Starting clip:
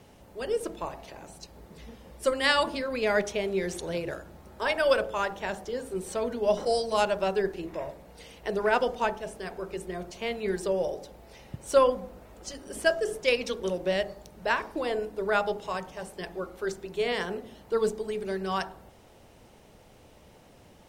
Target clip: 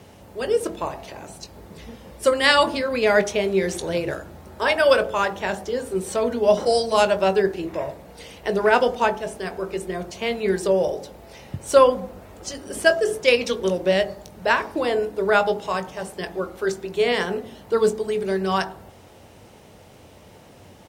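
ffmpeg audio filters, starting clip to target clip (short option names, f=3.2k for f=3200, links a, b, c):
-filter_complex "[0:a]highpass=66,equalizer=f=90:w=4.1:g=5,asplit=2[a][b];[b]adelay=21,volume=-12.5dB[c];[a][c]amix=inputs=2:normalize=0,volume=7dB"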